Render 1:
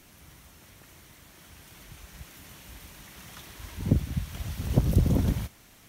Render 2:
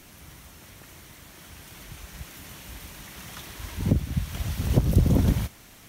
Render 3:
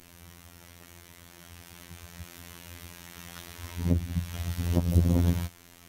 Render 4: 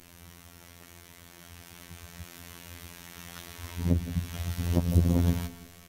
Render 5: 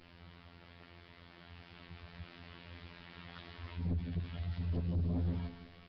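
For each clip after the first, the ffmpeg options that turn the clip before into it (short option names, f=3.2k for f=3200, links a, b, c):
-af "alimiter=limit=-13.5dB:level=0:latency=1:release=437,volume=5dB"
-af "afftfilt=real='hypot(re,im)*cos(PI*b)':imag='0':win_size=2048:overlap=0.75"
-af "aecho=1:1:167|334|501|668:0.178|0.0747|0.0314|0.0132"
-af "aresample=16000,asoftclip=type=tanh:threshold=-25dB,aresample=44100,volume=-4dB" -ar 11025 -c:a nellymoser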